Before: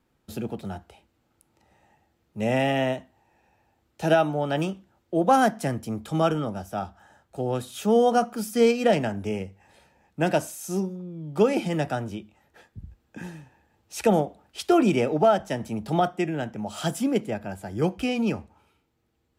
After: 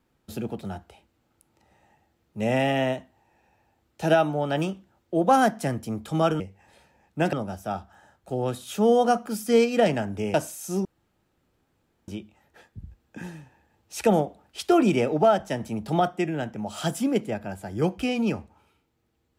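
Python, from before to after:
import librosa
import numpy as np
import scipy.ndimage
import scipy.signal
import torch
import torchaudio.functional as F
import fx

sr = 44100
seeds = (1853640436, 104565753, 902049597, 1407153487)

y = fx.edit(x, sr, fx.move(start_s=9.41, length_s=0.93, to_s=6.4),
    fx.room_tone_fill(start_s=10.85, length_s=1.23), tone=tone)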